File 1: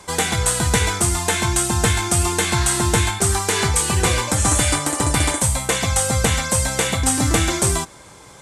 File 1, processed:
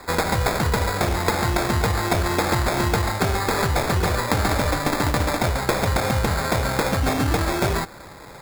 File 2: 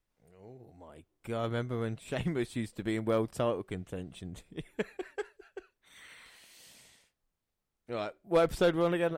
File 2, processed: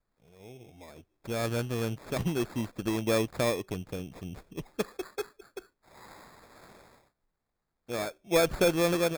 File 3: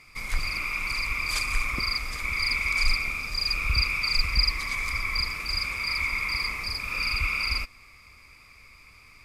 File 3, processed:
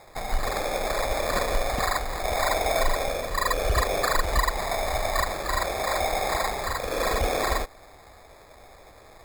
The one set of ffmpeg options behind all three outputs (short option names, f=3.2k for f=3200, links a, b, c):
-af "acompressor=threshold=-20dB:ratio=6,acrusher=samples=15:mix=1:aa=0.000001,volume=2.5dB"